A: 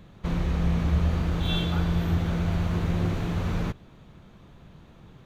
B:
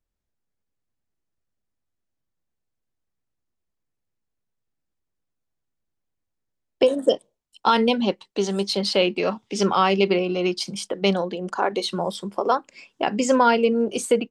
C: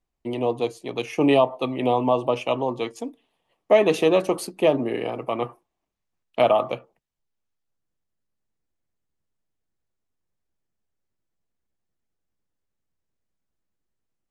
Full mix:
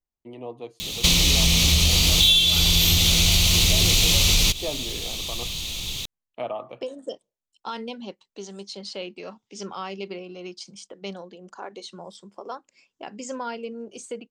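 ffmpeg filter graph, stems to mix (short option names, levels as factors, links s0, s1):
-filter_complex "[0:a]asubboost=boost=4:cutoff=71,acontrast=72,aexciter=amount=12:drive=9.8:freq=2600,adelay=800,volume=1.26[s0];[1:a]lowpass=f=7000:t=q:w=2.3,volume=0.178[s1];[2:a]highshelf=f=6700:g=-10.5,volume=0.237[s2];[s0][s1][s2]amix=inputs=3:normalize=0,acompressor=threshold=0.2:ratio=20"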